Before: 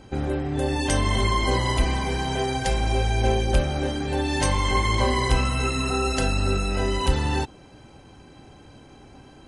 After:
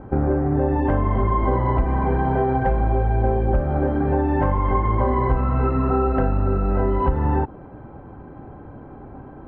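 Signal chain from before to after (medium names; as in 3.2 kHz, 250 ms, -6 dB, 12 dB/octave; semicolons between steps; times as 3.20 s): low-pass 1.4 kHz 24 dB/octave; compression, threshold -24 dBFS, peak gain reduction 9.5 dB; trim +8.5 dB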